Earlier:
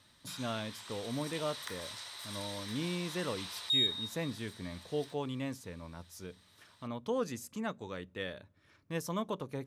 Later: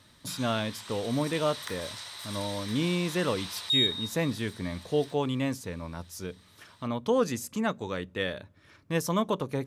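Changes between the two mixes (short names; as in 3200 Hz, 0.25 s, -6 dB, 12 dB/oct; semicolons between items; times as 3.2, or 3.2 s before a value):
speech +8.5 dB; background +4.0 dB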